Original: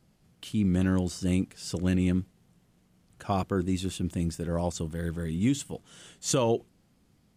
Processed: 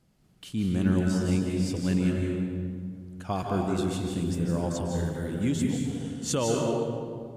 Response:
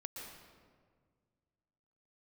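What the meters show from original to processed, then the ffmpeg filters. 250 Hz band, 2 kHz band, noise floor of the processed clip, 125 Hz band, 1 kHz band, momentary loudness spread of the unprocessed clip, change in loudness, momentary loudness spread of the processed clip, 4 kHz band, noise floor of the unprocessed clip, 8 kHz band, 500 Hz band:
+2.0 dB, +1.0 dB, -61 dBFS, +1.5 dB, +1.0 dB, 9 LU, +0.5 dB, 8 LU, 0.0 dB, -66 dBFS, -0.5 dB, +2.0 dB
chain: -filter_complex "[1:a]atrim=start_sample=2205,asetrate=34839,aresample=44100[a];[0:a][a]afir=irnorm=-1:irlink=0,volume=2dB"

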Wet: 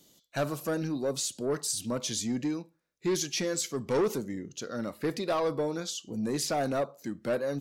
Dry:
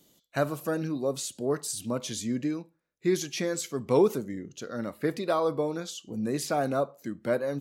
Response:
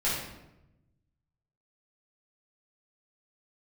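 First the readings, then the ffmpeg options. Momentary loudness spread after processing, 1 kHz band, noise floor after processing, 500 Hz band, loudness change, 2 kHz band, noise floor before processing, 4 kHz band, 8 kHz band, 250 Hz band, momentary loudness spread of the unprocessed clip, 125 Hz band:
7 LU, -2.5 dB, -72 dBFS, -2.5 dB, -1.5 dB, -1.5 dB, -72 dBFS, +3.0 dB, +3.0 dB, -2.0 dB, 10 LU, -2.0 dB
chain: -af "asoftclip=type=tanh:threshold=-22dB,equalizer=f=5.3k:t=o:w=1.2:g=5"

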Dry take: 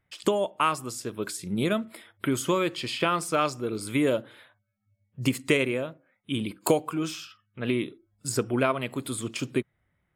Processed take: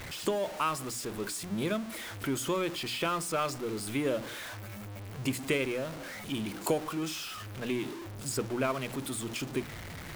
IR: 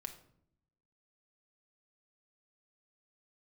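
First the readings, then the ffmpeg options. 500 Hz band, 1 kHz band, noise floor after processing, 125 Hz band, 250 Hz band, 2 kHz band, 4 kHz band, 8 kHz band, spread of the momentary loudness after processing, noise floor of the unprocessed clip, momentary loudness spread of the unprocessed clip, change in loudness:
-5.5 dB, -5.5 dB, -43 dBFS, -4.5 dB, -5.5 dB, -4.5 dB, -3.0 dB, -2.0 dB, 9 LU, -75 dBFS, 9 LU, -5.5 dB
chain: -af "aeval=exprs='val(0)+0.5*0.0376*sgn(val(0))':c=same,bandreject=f=60:t=h:w=6,bandreject=f=120:t=h:w=6,bandreject=f=180:t=h:w=6,bandreject=f=240:t=h:w=6,bandreject=f=300:t=h:w=6,volume=-7.5dB"

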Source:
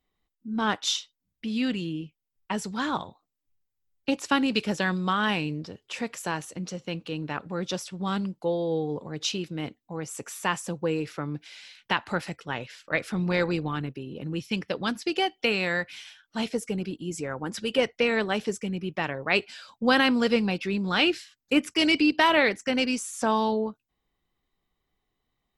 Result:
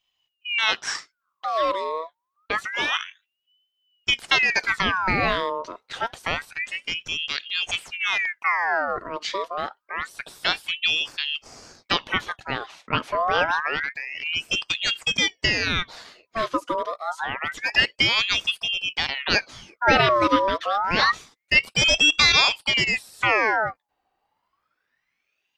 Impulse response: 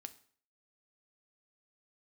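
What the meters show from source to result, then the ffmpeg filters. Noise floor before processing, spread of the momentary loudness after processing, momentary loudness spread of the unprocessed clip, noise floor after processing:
-82 dBFS, 12 LU, 13 LU, -79 dBFS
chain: -filter_complex "[0:a]highshelf=f=3.8k:g=-8,acrossover=split=5700[a][b];[b]acompressor=threshold=-54dB:ratio=4:attack=1:release=60[c];[a][c]amix=inputs=2:normalize=0,aeval=exprs='val(0)*sin(2*PI*1900*n/s+1900*0.6/0.27*sin(2*PI*0.27*n/s))':c=same,volume=7dB"

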